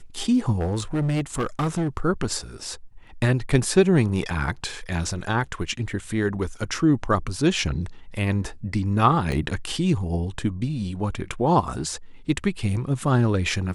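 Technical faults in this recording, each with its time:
0.55–1.98 clipped -20 dBFS
9.32 gap 2.3 ms

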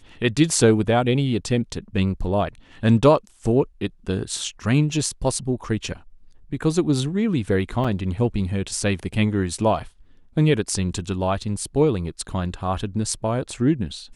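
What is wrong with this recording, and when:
7.84–7.85 gap 5.4 ms

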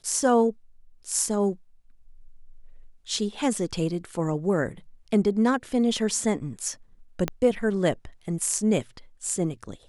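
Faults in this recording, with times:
7.28 pop -12 dBFS

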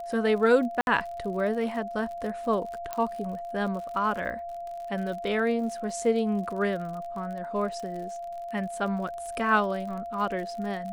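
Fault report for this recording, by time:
crackle 53/s -36 dBFS
tone 690 Hz -34 dBFS
0.81–0.87 gap 61 ms
2.93 pop -17 dBFS

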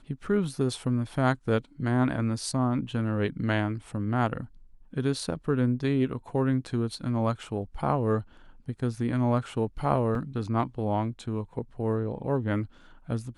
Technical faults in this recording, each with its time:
10.15 gap 2.1 ms

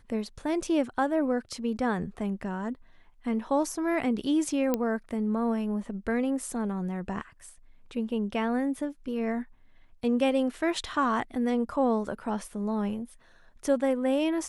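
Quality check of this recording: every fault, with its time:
4.74 pop -13 dBFS

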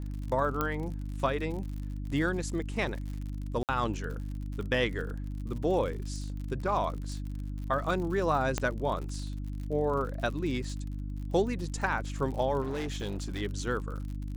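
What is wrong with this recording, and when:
crackle 64/s -38 dBFS
hum 50 Hz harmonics 6 -36 dBFS
0.61 pop -15 dBFS
3.63–3.69 gap 58 ms
8.58 pop -14 dBFS
12.61–13.42 clipped -30 dBFS

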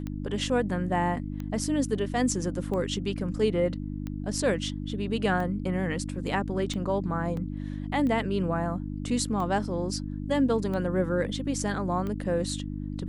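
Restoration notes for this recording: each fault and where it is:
hum 50 Hz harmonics 6 -34 dBFS
tick 45 rpm -23 dBFS
7.37 gap 2.4 ms

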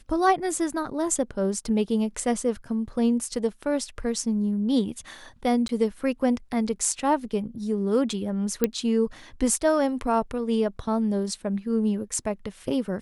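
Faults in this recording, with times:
5.68–5.69 gap 12 ms
8.64 pop -8 dBFS

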